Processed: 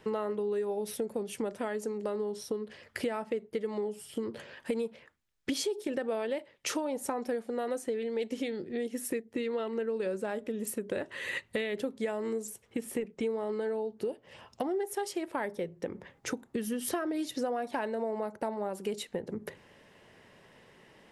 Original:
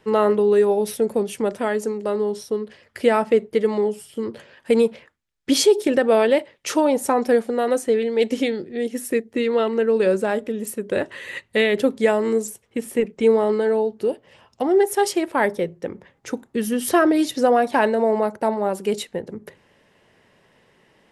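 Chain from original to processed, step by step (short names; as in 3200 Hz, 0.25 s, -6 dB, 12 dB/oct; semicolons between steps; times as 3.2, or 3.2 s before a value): compressor 5:1, threshold -32 dBFS, peak gain reduction 19 dB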